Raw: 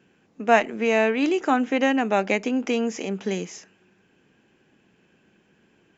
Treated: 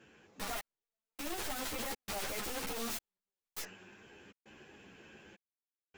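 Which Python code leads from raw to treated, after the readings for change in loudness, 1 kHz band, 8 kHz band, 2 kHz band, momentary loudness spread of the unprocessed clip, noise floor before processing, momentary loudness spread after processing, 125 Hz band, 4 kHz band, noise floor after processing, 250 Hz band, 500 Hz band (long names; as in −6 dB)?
−17.0 dB, −19.0 dB, can't be measured, −17.5 dB, 9 LU, −63 dBFS, 20 LU, −16.0 dB, −7.5 dB, below −85 dBFS, −23.5 dB, −22.5 dB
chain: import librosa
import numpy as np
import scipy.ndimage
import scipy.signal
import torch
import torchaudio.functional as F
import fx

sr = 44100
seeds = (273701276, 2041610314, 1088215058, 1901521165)

y = fx.peak_eq(x, sr, hz=200.0, db=-7.0, octaves=1.2)
y = fx.leveller(y, sr, passes=2)
y = fx.rider(y, sr, range_db=3, speed_s=2.0)
y = fx.tube_stage(y, sr, drive_db=32.0, bias=0.6)
y = (np.mod(10.0 ** (45.0 / 20.0) * y + 1.0, 2.0) - 1.0) / 10.0 ** (45.0 / 20.0)
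y = fx.step_gate(y, sr, bpm=101, pattern='xxxx....xxxxx.xx', floor_db=-60.0, edge_ms=4.5)
y = fx.ensemble(y, sr)
y = y * 10.0 ** (14.0 / 20.0)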